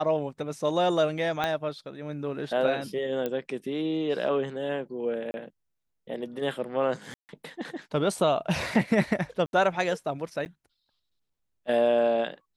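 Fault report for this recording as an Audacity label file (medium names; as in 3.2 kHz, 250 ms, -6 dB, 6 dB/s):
1.440000	1.440000	pop -14 dBFS
3.260000	3.260000	pop -17 dBFS
5.310000	5.340000	dropout 30 ms
7.140000	7.290000	dropout 149 ms
9.460000	9.530000	dropout 71 ms
10.450000	10.460000	dropout 9.6 ms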